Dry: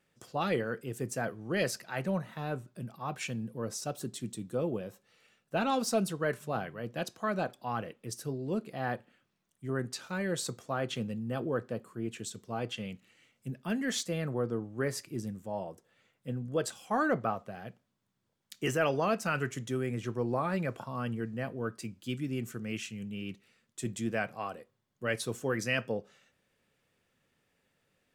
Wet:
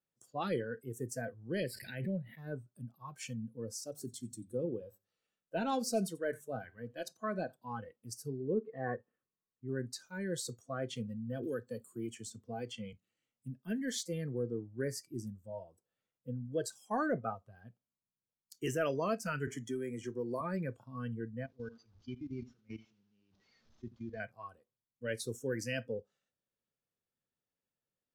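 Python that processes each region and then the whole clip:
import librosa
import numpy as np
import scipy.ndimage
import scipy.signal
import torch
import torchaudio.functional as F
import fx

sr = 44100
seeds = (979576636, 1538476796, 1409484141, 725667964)

y = fx.chain(x, sr, fx.high_shelf(hz=6000.0, db=-4.0),
    fx.fixed_phaser(hz=2700.0, stages=4),
    fx.pre_swell(db_per_s=32.0), at=(1.6, 2.38))
y = fx.chain(y, sr, fx.hum_notches(base_hz=50, count=3),
    fx.echo_single(ms=89, db=-18.5), at=(3.83, 7.71))
y = fx.chain(y, sr, fx.lowpass(hz=2300.0, slope=12),
    fx.small_body(hz=(450.0, 1100.0, 1800.0), ring_ms=35, db=10), at=(8.4, 9.68))
y = fx.chain(y, sr, fx.highpass(hz=76.0, slope=6),
    fx.band_squash(depth_pct=70), at=(11.43, 12.93))
y = fx.chain(y, sr, fx.peak_eq(hz=64.0, db=-10.5, octaves=2.2),
    fx.band_squash(depth_pct=70), at=(19.47, 20.41))
y = fx.chain(y, sr, fx.delta_mod(bps=32000, step_db=-44.5),
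    fx.level_steps(step_db=18),
    fx.echo_feedback(ms=82, feedback_pct=41, wet_db=-13.5), at=(21.46, 24.2))
y = fx.noise_reduce_blind(y, sr, reduce_db=16)
y = fx.peak_eq(y, sr, hz=2200.0, db=-7.0, octaves=0.88)
y = y * 10.0 ** (-3.5 / 20.0)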